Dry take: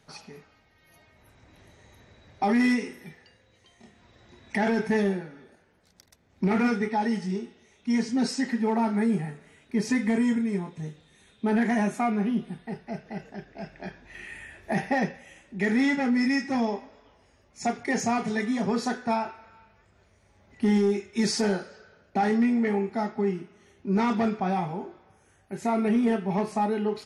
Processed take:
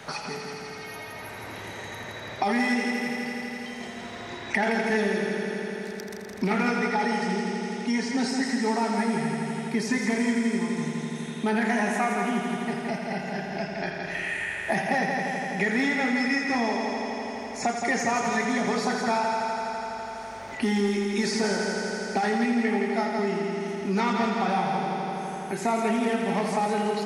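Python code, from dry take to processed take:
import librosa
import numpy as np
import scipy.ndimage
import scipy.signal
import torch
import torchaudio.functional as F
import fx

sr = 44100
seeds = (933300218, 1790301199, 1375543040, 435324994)

y = fx.low_shelf(x, sr, hz=470.0, db=-9.5)
y = fx.over_compress(y, sr, threshold_db=-27.0, ratio=-1.0)
y = fx.echo_heads(y, sr, ms=83, heads='first and second', feedback_pct=68, wet_db=-8.0)
y = fx.band_squash(y, sr, depth_pct=70)
y = y * librosa.db_to_amplitude(3.5)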